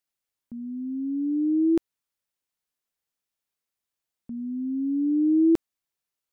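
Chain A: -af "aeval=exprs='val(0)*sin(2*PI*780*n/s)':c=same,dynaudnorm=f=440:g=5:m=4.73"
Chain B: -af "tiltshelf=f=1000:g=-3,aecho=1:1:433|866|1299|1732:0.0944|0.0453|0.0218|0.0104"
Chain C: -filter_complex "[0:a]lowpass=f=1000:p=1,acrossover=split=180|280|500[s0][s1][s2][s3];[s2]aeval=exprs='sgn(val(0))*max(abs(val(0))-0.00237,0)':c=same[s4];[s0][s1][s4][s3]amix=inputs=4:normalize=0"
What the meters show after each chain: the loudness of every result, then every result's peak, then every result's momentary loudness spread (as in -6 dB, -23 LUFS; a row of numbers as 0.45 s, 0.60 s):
-16.0 LUFS, -27.5 LUFS, -25.5 LUFS; -3.5 dBFS, -16.0 dBFS, -13.5 dBFS; 17 LU, 22 LU, 16 LU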